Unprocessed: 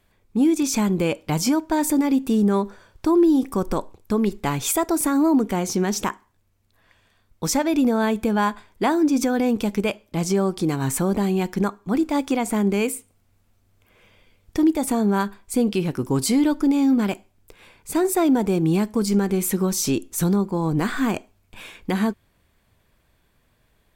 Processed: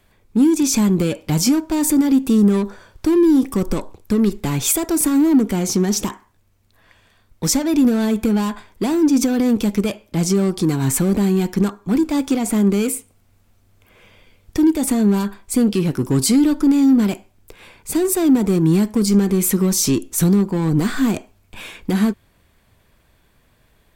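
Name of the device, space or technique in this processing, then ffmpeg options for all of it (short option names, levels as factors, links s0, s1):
one-band saturation: -filter_complex "[0:a]acrossover=split=360|3800[s0][s1][s2];[s1]asoftclip=type=tanh:threshold=0.0224[s3];[s0][s3][s2]amix=inputs=3:normalize=0,volume=2"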